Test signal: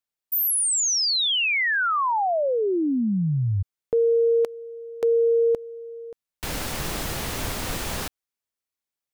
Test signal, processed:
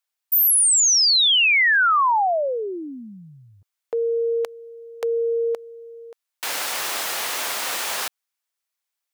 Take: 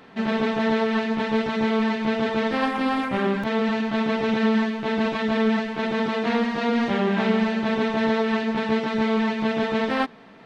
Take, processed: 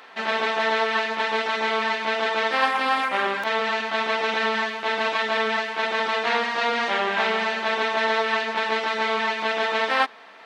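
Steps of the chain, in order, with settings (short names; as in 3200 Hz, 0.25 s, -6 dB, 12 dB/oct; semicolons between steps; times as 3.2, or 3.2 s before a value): HPF 740 Hz 12 dB/oct; gain +6 dB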